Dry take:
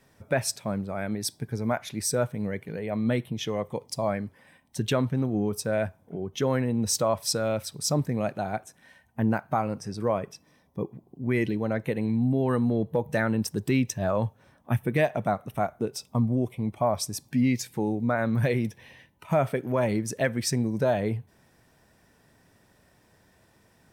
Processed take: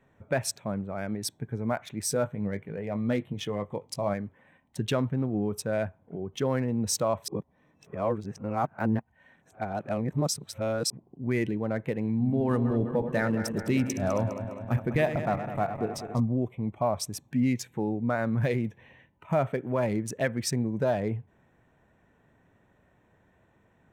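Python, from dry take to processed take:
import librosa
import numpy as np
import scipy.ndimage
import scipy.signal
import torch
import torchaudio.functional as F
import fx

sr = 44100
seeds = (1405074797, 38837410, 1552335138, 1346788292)

y = fx.doubler(x, sr, ms=20.0, db=-9.5, at=(2.08, 4.14))
y = fx.reverse_delay_fb(y, sr, ms=102, feedback_pct=79, wet_db=-9.5, at=(12.1, 16.2))
y = fx.edit(y, sr, fx.reverse_span(start_s=7.28, length_s=3.62), tone=tone)
y = fx.wiener(y, sr, points=9)
y = y * 10.0 ** (-2.0 / 20.0)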